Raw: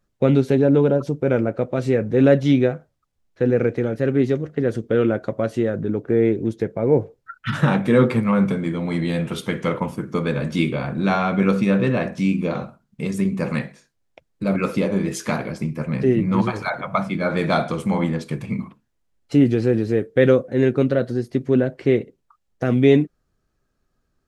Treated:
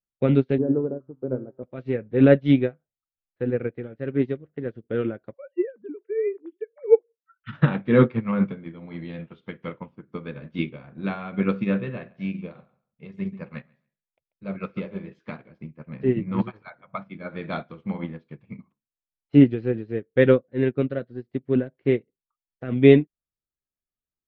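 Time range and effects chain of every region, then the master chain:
0.58–1.63 LPF 1300 Hz 24 dB/oct + bell 360 Hz +12 dB 2.6 oct + resonator 130 Hz, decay 0.7 s, mix 80%
5.34–7.42 sine-wave speech + doubler 17 ms -12.5 dB
11.79–15.19 bell 280 Hz -7.5 dB 0.35 oct + feedback echo 0.139 s, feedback 17%, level -13 dB
whole clip: LPF 3500 Hz 24 dB/oct; dynamic EQ 790 Hz, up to -4 dB, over -30 dBFS, Q 1.3; upward expander 2.5:1, over -32 dBFS; gain +3 dB

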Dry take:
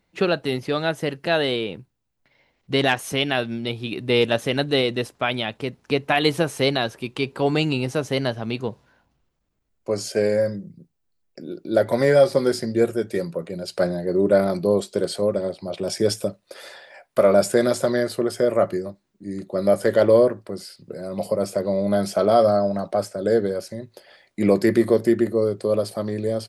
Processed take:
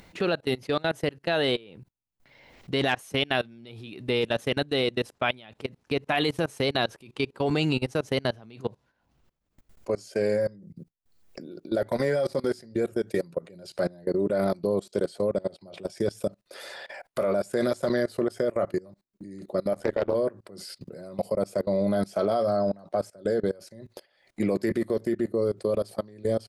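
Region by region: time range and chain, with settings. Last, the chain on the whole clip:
19.73–20.15 high shelf 6900 Hz -9 dB + AM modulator 80 Hz, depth 65% + Doppler distortion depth 0.19 ms
whole clip: level quantiser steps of 24 dB; gate -57 dBFS, range -9 dB; upward compressor, threshold -32 dBFS

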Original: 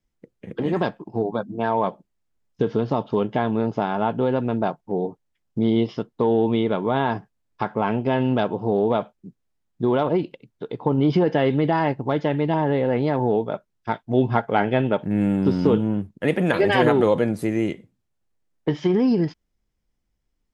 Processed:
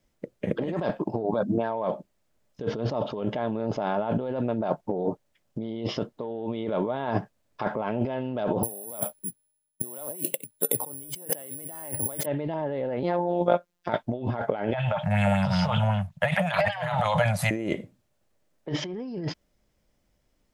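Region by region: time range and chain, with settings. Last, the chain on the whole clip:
8.63–12.26 high shelf 2500 Hz +8 dB + careless resampling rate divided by 4×, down filtered, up zero stuff + three-band expander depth 70%
13.03–13.89 robotiser 175 Hz + low shelf 130 Hz -8 dB
14.73–17.51 Chebyshev band-stop 160–710 Hz, order 3 + LFO bell 5.3 Hz 440–3700 Hz +8 dB
whole clip: low shelf 65 Hz -8 dB; negative-ratio compressor -31 dBFS, ratio -1; bell 590 Hz +9.5 dB 0.3 oct

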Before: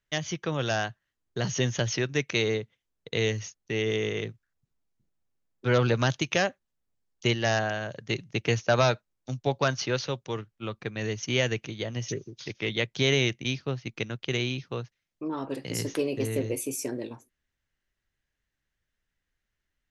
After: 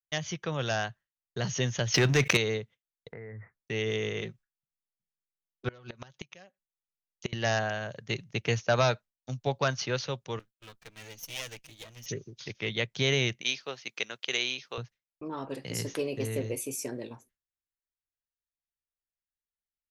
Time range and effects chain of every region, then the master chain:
1.94–2.37 sample leveller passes 2 + fast leveller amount 70%
3.12–3.61 steep low-pass 2100 Hz 96 dB/oct + compressor 16:1, threshold -36 dBFS
4.21–7.33 comb 5.4 ms, depth 50% + flipped gate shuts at -15 dBFS, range -28 dB
10.39–12.06 minimum comb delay 6.3 ms + pre-emphasis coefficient 0.8
13.41–14.78 HPF 420 Hz + high shelf 2300 Hz +7.5 dB
whole clip: gate with hold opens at -48 dBFS; bell 310 Hz -5 dB 0.55 oct; gain -2 dB

